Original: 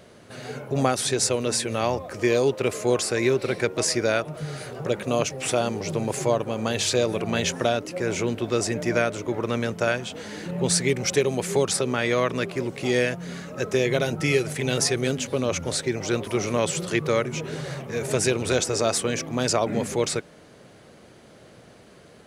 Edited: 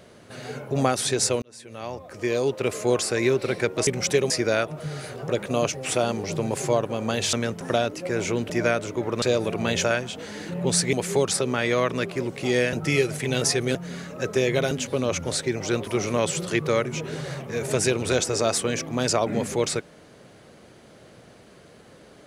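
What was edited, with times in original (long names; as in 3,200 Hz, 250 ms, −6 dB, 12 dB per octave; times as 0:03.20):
0:01.42–0:02.80: fade in
0:06.90–0:07.52: swap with 0:09.53–0:09.81
0:08.41–0:08.81: remove
0:10.90–0:11.33: move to 0:03.87
0:13.13–0:14.09: move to 0:15.11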